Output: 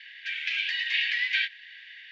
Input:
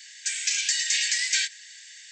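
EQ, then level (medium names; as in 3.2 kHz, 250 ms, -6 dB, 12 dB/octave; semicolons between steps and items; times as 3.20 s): steep low-pass 3.2 kHz 36 dB/octave; dynamic bell 1.4 kHz, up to -3 dB, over -45 dBFS, Q 0.84; +5.0 dB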